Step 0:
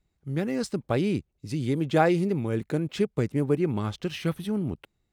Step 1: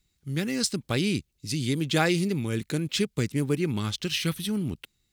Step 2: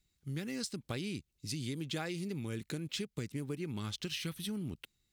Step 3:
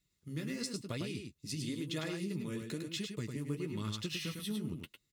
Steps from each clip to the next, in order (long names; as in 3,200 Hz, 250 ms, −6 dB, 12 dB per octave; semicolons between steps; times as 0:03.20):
drawn EQ curve 250 Hz 0 dB, 680 Hz −7 dB, 4,100 Hz +12 dB
downward compressor 5 to 1, threshold −30 dBFS, peak gain reduction 11 dB; level −5.5 dB
notch comb filter 780 Hz; flanger 0.99 Hz, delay 5.9 ms, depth 9 ms, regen −32%; single-tap delay 103 ms −5.5 dB; level +3.5 dB